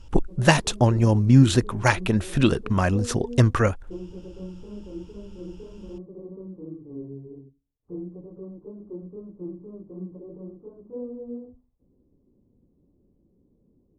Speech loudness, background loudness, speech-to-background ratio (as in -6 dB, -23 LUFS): -21.0 LUFS, -40.0 LUFS, 19.0 dB